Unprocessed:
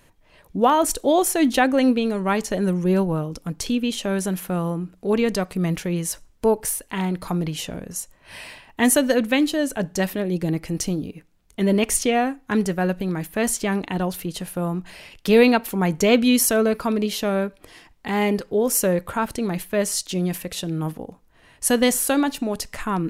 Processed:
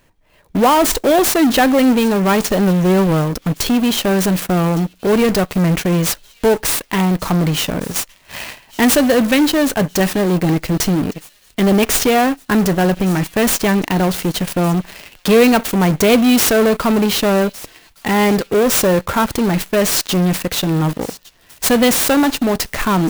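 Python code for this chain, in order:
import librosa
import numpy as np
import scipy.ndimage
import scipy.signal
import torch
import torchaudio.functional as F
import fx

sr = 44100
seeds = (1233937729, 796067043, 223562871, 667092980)

p1 = fx.fuzz(x, sr, gain_db=31.0, gate_db=-38.0)
p2 = x + F.gain(torch.from_numpy(p1), -3.0).numpy()
p3 = fx.echo_wet_highpass(p2, sr, ms=1161, feedback_pct=43, hz=3700.0, wet_db=-18.0)
y = fx.clock_jitter(p3, sr, seeds[0], jitter_ms=0.022)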